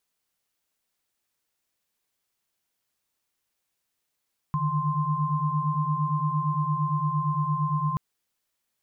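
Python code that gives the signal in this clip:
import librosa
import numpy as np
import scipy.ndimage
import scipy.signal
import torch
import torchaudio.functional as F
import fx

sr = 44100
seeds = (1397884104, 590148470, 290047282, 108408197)

y = fx.chord(sr, length_s=3.43, notes=(50, 51, 84), wave='sine', level_db=-27.5)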